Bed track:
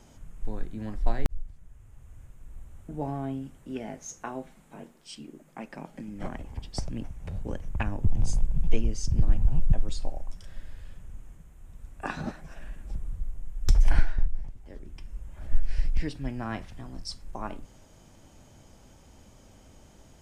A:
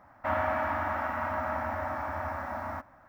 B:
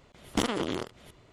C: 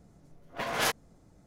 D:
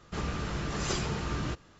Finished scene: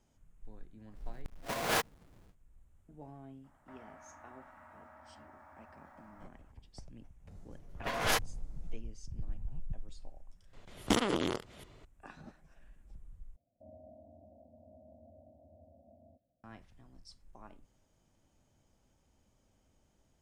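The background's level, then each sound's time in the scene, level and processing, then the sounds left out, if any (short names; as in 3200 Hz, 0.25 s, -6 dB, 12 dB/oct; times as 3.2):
bed track -18 dB
0.9 add C -7 dB, fades 0.10 s + half-waves squared off
3.44 add A -13 dB + compressor 3:1, threshold -44 dBFS
7.27 add C -2 dB
10.53 add B -1 dB
13.36 replace with A -17 dB + rippled Chebyshev low-pass 710 Hz, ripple 6 dB
not used: D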